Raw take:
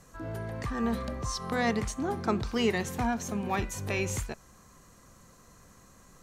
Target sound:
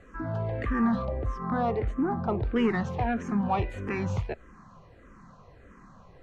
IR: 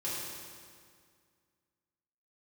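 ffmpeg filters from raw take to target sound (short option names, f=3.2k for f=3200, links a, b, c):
-filter_complex "[0:a]asoftclip=type=tanh:threshold=-24dB,asetnsamples=n=441:p=0,asendcmd='1.05 lowpass f 1300;2.56 lowpass f 2100',lowpass=2.4k,asplit=2[a][b];[b]afreqshift=-1.6[c];[a][c]amix=inputs=2:normalize=1,volume=8dB"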